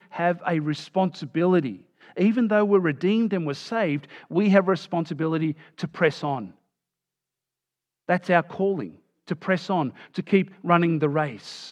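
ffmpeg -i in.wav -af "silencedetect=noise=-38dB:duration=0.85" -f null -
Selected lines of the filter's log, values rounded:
silence_start: 6.50
silence_end: 8.09 | silence_duration: 1.58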